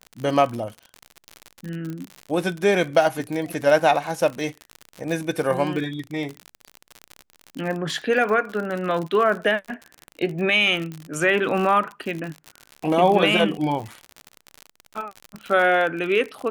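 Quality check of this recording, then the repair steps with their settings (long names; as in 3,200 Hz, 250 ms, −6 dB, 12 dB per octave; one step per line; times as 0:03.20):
surface crackle 57 per second −27 dBFS
0:01.90: click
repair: click removal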